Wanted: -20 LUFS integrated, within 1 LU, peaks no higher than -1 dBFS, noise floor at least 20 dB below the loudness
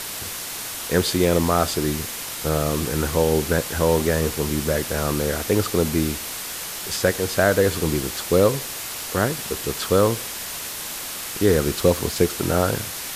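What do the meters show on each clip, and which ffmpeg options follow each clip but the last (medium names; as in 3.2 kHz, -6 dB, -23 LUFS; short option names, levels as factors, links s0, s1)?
noise floor -32 dBFS; noise floor target -42 dBFS; loudness -22.0 LUFS; peak level -4.0 dBFS; loudness target -20.0 LUFS
-> -af "afftdn=nr=10:nf=-32"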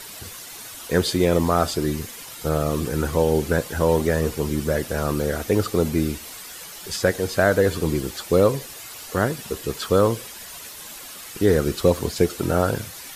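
noise floor -39 dBFS; noise floor target -43 dBFS
-> -af "afftdn=nr=6:nf=-39"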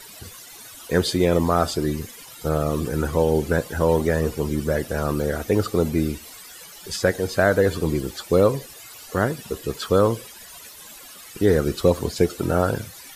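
noise floor -43 dBFS; loudness -22.5 LUFS; peak level -5.0 dBFS; loudness target -20.0 LUFS
-> -af "volume=1.33"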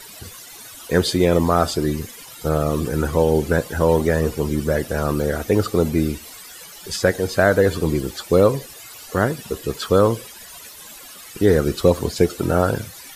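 loudness -20.0 LUFS; peak level -2.5 dBFS; noise floor -40 dBFS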